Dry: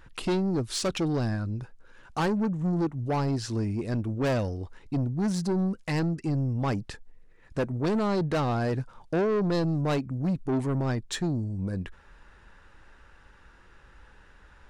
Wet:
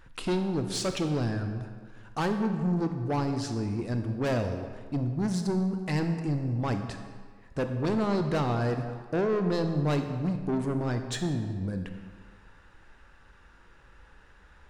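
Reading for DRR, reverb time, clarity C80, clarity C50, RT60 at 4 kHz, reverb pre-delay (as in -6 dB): 6.0 dB, 1.7 s, 8.5 dB, 7.5 dB, 1.2 s, 23 ms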